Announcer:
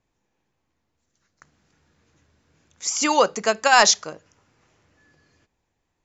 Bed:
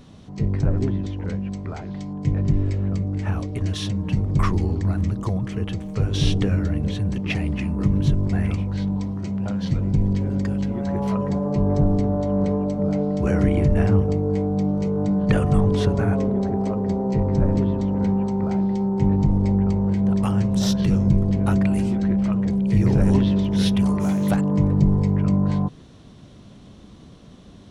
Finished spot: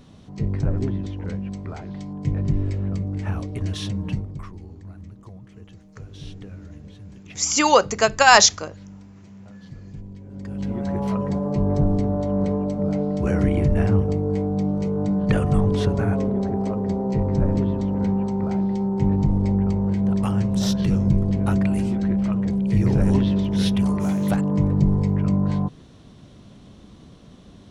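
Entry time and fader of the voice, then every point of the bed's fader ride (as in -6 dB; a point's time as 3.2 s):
4.55 s, +2.5 dB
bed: 4.1 s -2 dB
4.45 s -18 dB
10.24 s -18 dB
10.7 s -1 dB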